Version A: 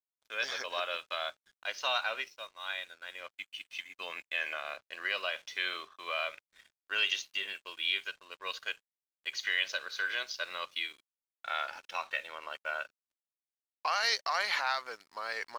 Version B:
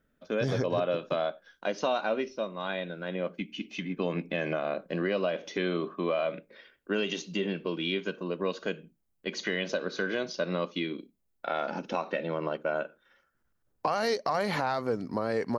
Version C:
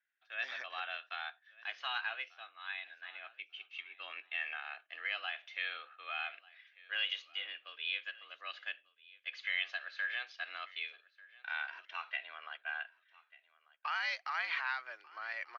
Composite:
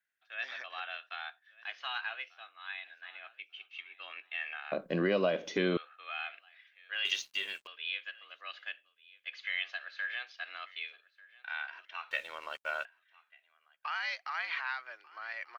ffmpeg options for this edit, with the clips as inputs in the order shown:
-filter_complex "[0:a]asplit=2[a][b];[2:a]asplit=4[c][d][e][f];[c]atrim=end=4.722[g];[1:a]atrim=start=4.718:end=5.772[h];[d]atrim=start=5.768:end=7.052[i];[a]atrim=start=7.048:end=7.672[j];[e]atrim=start=7.668:end=12.112[k];[b]atrim=start=12.108:end=12.852[l];[f]atrim=start=12.848[m];[g][h]acrossfade=d=0.004:c1=hsin:c2=hsin[n];[n][i]acrossfade=d=0.004:c1=hsin:c2=hsin[o];[o][j]acrossfade=d=0.004:c1=hsin:c2=hsin[p];[p][k]acrossfade=d=0.004:c1=hsin:c2=hsin[q];[q][l]acrossfade=d=0.004:c1=hsin:c2=hsin[r];[r][m]acrossfade=d=0.004:c1=hsin:c2=hsin"

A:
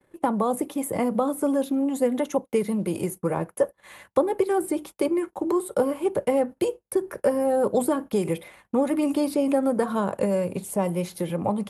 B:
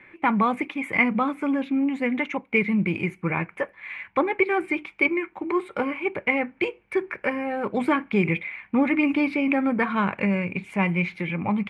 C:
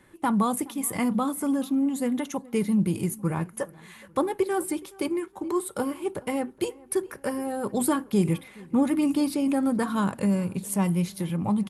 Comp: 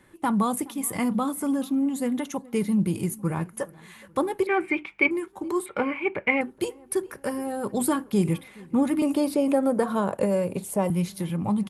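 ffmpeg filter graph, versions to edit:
-filter_complex "[1:a]asplit=2[a][b];[2:a]asplit=4[c][d][e][f];[c]atrim=end=4.472[g];[a]atrim=start=4.468:end=5.112[h];[d]atrim=start=5.108:end=5.662[i];[b]atrim=start=5.658:end=6.412[j];[e]atrim=start=6.408:end=9.022[k];[0:a]atrim=start=9.018:end=10.902[l];[f]atrim=start=10.898[m];[g][h]acrossfade=d=0.004:c1=hsin:c2=hsin[n];[n][i]acrossfade=d=0.004:c1=hsin:c2=hsin[o];[o][j]acrossfade=d=0.004:c1=hsin:c2=hsin[p];[p][k]acrossfade=d=0.004:c1=hsin:c2=hsin[q];[q][l]acrossfade=d=0.004:c1=hsin:c2=hsin[r];[r][m]acrossfade=d=0.004:c1=hsin:c2=hsin"

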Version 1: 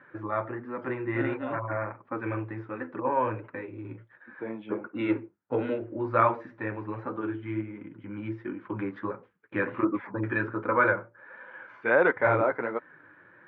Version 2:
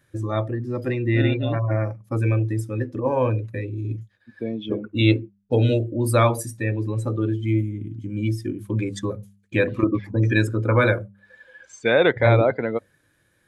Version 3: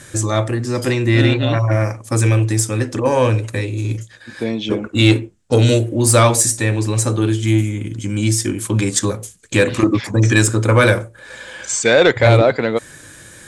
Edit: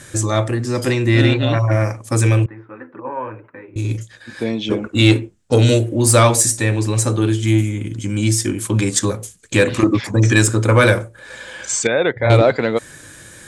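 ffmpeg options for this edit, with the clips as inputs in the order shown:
-filter_complex "[2:a]asplit=3[a][b][c];[a]atrim=end=2.462[d];[0:a]atrim=start=2.458:end=3.762[e];[b]atrim=start=3.758:end=11.872[f];[1:a]atrim=start=11.868:end=12.302[g];[c]atrim=start=12.298[h];[d][e]acrossfade=d=0.004:c1=hsin:c2=hsin[i];[i][f]acrossfade=d=0.004:c1=hsin:c2=hsin[j];[j][g]acrossfade=d=0.004:c1=hsin:c2=hsin[k];[k][h]acrossfade=d=0.004:c1=hsin:c2=hsin"

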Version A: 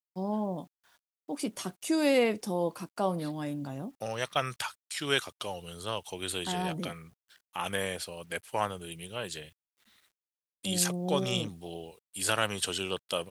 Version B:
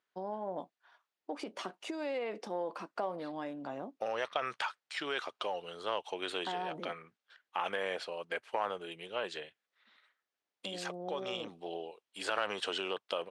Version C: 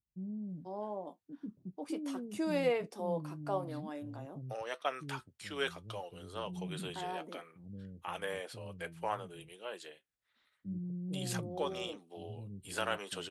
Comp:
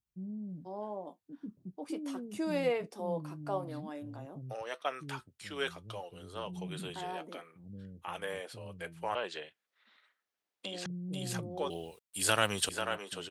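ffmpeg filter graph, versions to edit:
-filter_complex "[2:a]asplit=3[a][b][c];[a]atrim=end=9.152[d];[1:a]atrim=start=9.148:end=10.862[e];[b]atrim=start=10.858:end=11.702[f];[0:a]atrim=start=11.698:end=12.692[g];[c]atrim=start=12.688[h];[d][e]acrossfade=d=0.004:c1=hsin:c2=hsin[i];[i][f]acrossfade=d=0.004:c1=hsin:c2=hsin[j];[j][g]acrossfade=d=0.004:c1=hsin:c2=hsin[k];[k][h]acrossfade=d=0.004:c1=hsin:c2=hsin"

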